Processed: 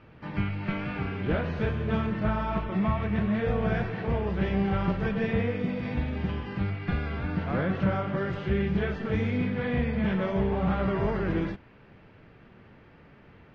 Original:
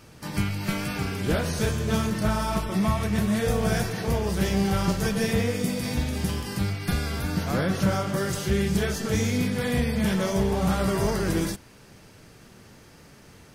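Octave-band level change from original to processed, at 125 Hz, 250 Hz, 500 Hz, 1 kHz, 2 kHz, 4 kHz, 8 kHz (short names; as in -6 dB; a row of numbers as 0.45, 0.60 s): -2.5 dB, -2.5 dB, -2.5 dB, -2.5 dB, -3.0 dB, -11.5 dB, under -30 dB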